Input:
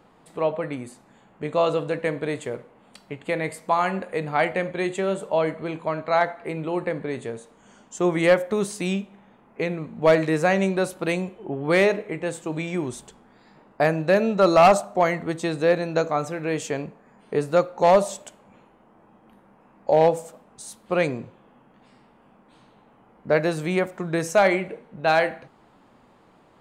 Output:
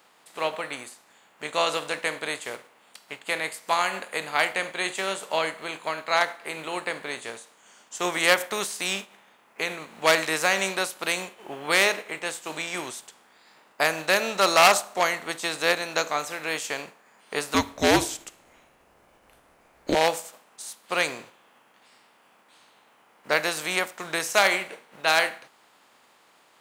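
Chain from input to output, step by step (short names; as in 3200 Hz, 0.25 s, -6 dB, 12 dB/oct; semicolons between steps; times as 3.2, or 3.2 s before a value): spectral contrast lowered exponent 0.67; HPF 1100 Hz 6 dB/oct; 17.54–19.95 frequency shift -260 Hz; gain +1.5 dB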